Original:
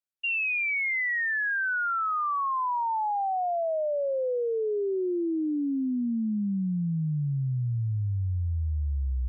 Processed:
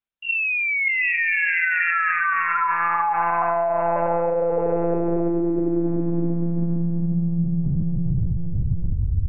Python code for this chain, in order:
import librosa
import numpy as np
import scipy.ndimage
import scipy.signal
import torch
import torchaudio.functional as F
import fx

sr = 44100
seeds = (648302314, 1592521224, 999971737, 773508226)

y = fx.echo_diffused(x, sr, ms=634, feedback_pct=44, wet_db=-4)
y = fx.lpc_monotone(y, sr, seeds[0], pitch_hz=170.0, order=10)
y = y * 10.0 ** (5.0 / 20.0)